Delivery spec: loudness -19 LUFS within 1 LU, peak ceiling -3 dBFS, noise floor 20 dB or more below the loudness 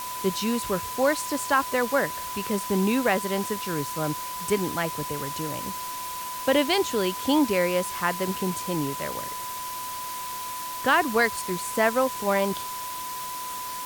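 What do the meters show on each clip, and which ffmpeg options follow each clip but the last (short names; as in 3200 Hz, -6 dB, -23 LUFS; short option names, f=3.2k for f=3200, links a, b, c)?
steady tone 1000 Hz; tone level -33 dBFS; noise floor -34 dBFS; noise floor target -47 dBFS; loudness -26.5 LUFS; peak -9.0 dBFS; loudness target -19.0 LUFS
-> -af "bandreject=f=1k:w=30"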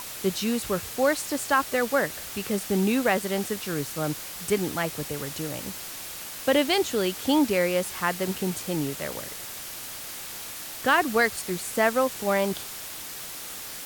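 steady tone none; noise floor -38 dBFS; noise floor target -47 dBFS
-> -af "afftdn=nr=9:nf=-38"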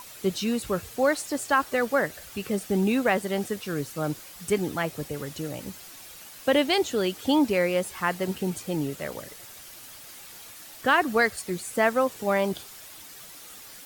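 noise floor -45 dBFS; noise floor target -47 dBFS
-> -af "afftdn=nr=6:nf=-45"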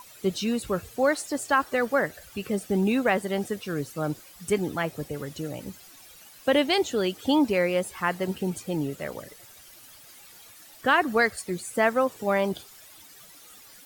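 noise floor -50 dBFS; loudness -26.5 LUFS; peak -9.5 dBFS; loudness target -19.0 LUFS
-> -af "volume=7.5dB,alimiter=limit=-3dB:level=0:latency=1"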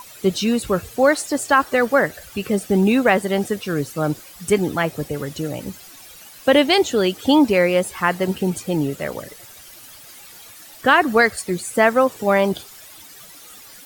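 loudness -19.0 LUFS; peak -3.0 dBFS; noise floor -43 dBFS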